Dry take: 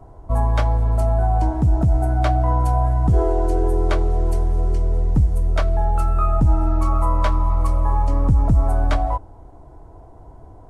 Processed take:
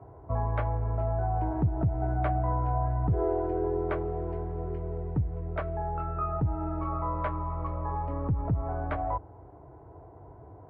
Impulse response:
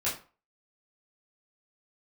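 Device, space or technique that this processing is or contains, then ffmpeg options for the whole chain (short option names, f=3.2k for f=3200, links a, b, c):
bass amplifier: -af "lowshelf=f=150:g=4,acompressor=threshold=-16dB:ratio=3,highpass=f=70:w=0.5412,highpass=f=70:w=1.3066,equalizer=f=73:t=q:w=4:g=-6,equalizer=f=220:t=q:w=4:g=-9,equalizer=f=420:t=q:w=4:g=4,lowpass=f=2.3k:w=0.5412,lowpass=f=2.3k:w=1.3066,volume=-4dB"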